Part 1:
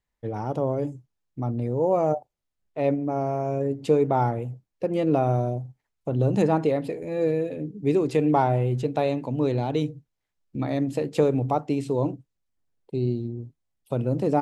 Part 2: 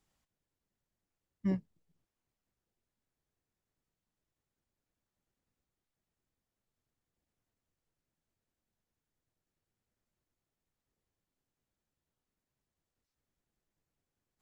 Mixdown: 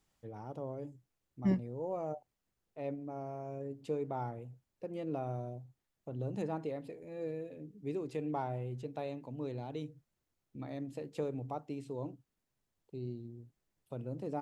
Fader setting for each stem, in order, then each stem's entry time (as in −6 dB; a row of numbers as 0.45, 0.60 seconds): −16.0, +2.0 decibels; 0.00, 0.00 seconds